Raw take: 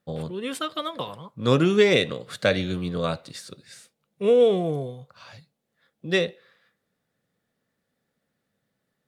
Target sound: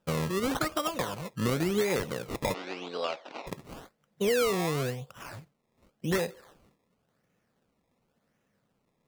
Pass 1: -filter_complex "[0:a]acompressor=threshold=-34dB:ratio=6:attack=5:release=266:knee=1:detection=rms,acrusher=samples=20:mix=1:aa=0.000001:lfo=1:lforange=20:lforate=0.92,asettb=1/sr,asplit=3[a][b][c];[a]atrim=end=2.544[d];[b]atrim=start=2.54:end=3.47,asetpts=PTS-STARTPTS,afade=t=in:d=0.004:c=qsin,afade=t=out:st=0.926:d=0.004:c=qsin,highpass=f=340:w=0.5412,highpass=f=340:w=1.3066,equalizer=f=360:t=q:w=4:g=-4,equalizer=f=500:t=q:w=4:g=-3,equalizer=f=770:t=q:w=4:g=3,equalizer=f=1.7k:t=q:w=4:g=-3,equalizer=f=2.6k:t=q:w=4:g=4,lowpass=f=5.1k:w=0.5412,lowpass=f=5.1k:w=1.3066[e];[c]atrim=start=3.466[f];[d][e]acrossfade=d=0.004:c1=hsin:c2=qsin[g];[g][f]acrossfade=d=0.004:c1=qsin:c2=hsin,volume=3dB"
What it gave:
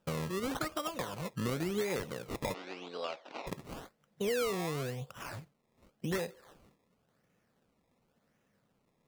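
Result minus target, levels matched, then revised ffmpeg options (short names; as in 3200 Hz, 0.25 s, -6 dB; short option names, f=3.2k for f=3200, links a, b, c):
compressor: peak gain reduction +6.5 dB
-filter_complex "[0:a]acompressor=threshold=-26.5dB:ratio=6:attack=5:release=266:knee=1:detection=rms,acrusher=samples=20:mix=1:aa=0.000001:lfo=1:lforange=20:lforate=0.92,asettb=1/sr,asplit=3[a][b][c];[a]atrim=end=2.544[d];[b]atrim=start=2.54:end=3.47,asetpts=PTS-STARTPTS,afade=t=in:d=0.004:c=qsin,afade=t=out:st=0.926:d=0.004:c=qsin,highpass=f=340:w=0.5412,highpass=f=340:w=1.3066,equalizer=f=360:t=q:w=4:g=-4,equalizer=f=500:t=q:w=4:g=-3,equalizer=f=770:t=q:w=4:g=3,equalizer=f=1.7k:t=q:w=4:g=-3,equalizer=f=2.6k:t=q:w=4:g=4,lowpass=f=5.1k:w=0.5412,lowpass=f=5.1k:w=1.3066[e];[c]atrim=start=3.466[f];[d][e]acrossfade=d=0.004:c1=hsin:c2=qsin[g];[g][f]acrossfade=d=0.004:c1=qsin:c2=hsin,volume=3dB"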